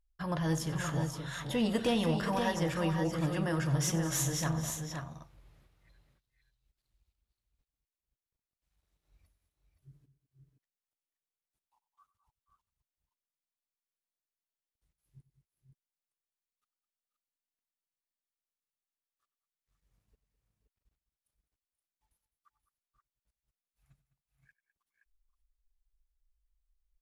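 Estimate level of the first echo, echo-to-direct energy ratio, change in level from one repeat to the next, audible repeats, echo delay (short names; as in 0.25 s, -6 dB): -17.0 dB, -5.0 dB, no steady repeat, 4, 94 ms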